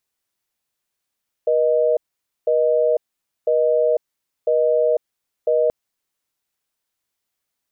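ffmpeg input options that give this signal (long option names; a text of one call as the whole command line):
ffmpeg -f lavfi -i "aevalsrc='0.141*(sin(2*PI*480*t)+sin(2*PI*620*t))*clip(min(mod(t,1),0.5-mod(t,1))/0.005,0,1)':duration=4.23:sample_rate=44100" out.wav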